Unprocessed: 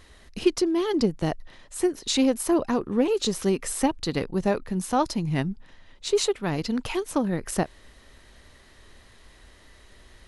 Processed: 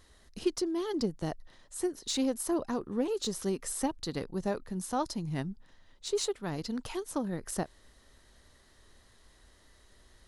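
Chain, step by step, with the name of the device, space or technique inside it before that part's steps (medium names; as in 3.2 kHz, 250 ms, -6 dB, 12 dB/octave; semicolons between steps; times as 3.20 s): exciter from parts (in parallel at -4.5 dB: high-pass 2.3 kHz 24 dB/octave + saturation -23 dBFS, distortion -15 dB); on the sum: trim -8.5 dB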